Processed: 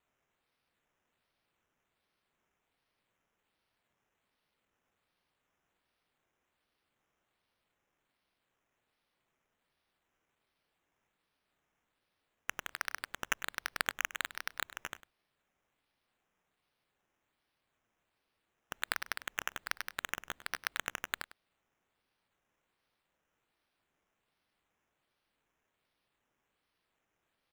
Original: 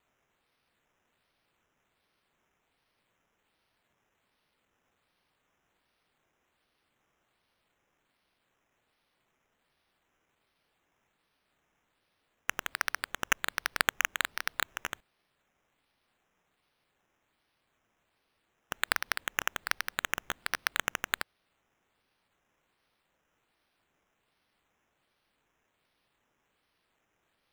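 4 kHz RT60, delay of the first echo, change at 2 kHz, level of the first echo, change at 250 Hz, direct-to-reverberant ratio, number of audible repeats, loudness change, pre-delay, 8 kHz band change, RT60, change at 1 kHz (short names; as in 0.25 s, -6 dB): none, 0.101 s, -6.0 dB, -16.0 dB, -6.0 dB, none, 1, -6.0 dB, none, -6.0 dB, none, -6.0 dB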